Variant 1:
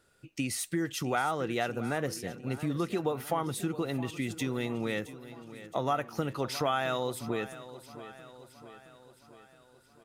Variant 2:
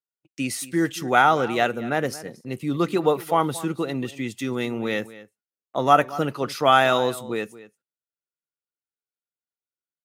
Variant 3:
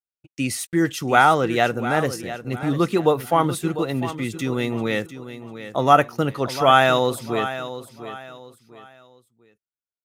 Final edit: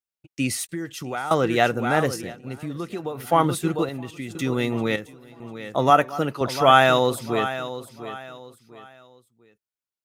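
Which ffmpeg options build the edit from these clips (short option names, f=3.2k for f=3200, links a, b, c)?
-filter_complex "[0:a]asplit=4[a][b][c][d];[2:a]asplit=6[e][f][g][h][i][j];[e]atrim=end=0.692[k];[a]atrim=start=0.688:end=1.312[l];[f]atrim=start=1.308:end=2.38[m];[b]atrim=start=2.22:end=3.3[n];[g]atrim=start=3.14:end=3.892[o];[c]atrim=start=3.888:end=4.352[p];[h]atrim=start=4.348:end=4.962[q];[d]atrim=start=4.958:end=5.402[r];[i]atrim=start=5.398:end=5.902[s];[1:a]atrim=start=5.898:end=6.412[t];[j]atrim=start=6.408[u];[k][l]acrossfade=d=0.004:c1=hsin:c2=hsin[v];[v][m]acrossfade=d=0.004:c1=hsin:c2=hsin[w];[w][n]acrossfade=d=0.16:c1=tri:c2=tri[x];[x][o]acrossfade=d=0.16:c1=tri:c2=tri[y];[y][p]acrossfade=d=0.004:c1=hsin:c2=hsin[z];[z][q]acrossfade=d=0.004:c1=hsin:c2=hsin[aa];[aa][r]acrossfade=d=0.004:c1=hsin:c2=hsin[ab];[ab][s]acrossfade=d=0.004:c1=hsin:c2=hsin[ac];[ac][t]acrossfade=d=0.004:c1=hsin:c2=hsin[ad];[ad][u]acrossfade=d=0.004:c1=hsin:c2=hsin"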